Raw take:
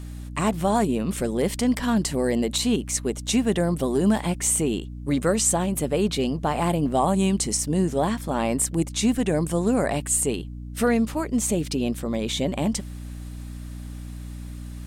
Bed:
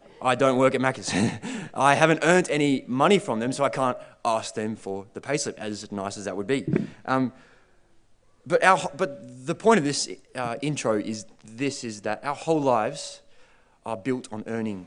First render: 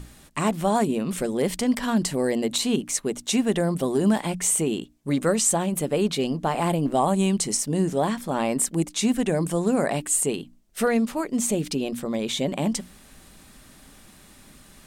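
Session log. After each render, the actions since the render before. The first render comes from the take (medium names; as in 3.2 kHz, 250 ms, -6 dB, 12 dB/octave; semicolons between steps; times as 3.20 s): hum notches 60/120/180/240/300 Hz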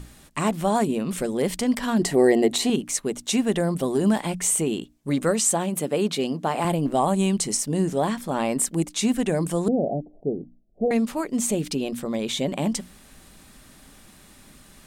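1.99–2.70 s: small resonant body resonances 380/710/1900 Hz, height 11 dB, ringing for 25 ms; 5.31–6.65 s: high-pass 150 Hz; 9.68–10.91 s: steep low-pass 750 Hz 72 dB/octave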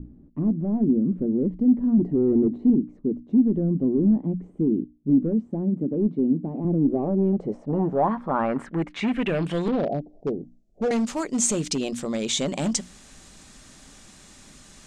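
overload inside the chain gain 19.5 dB; low-pass sweep 280 Hz -> 6.9 kHz, 6.62–10.43 s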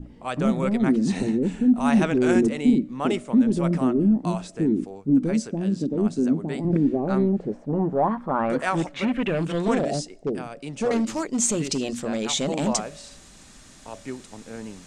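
add bed -8 dB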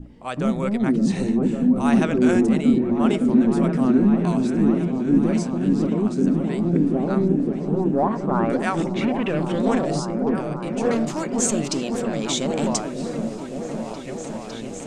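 delay with an opening low-pass 556 ms, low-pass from 400 Hz, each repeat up 1 oct, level -3 dB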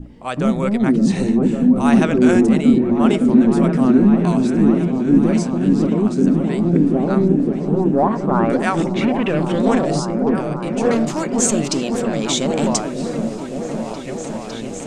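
trim +4.5 dB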